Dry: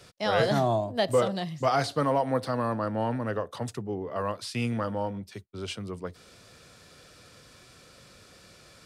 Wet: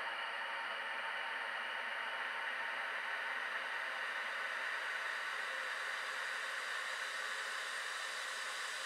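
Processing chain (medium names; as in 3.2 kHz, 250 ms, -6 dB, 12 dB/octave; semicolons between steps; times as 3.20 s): resonant high-pass 2.1 kHz, resonance Q 2.6; Paulstretch 20×, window 1.00 s, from 3.07 s; trim +1 dB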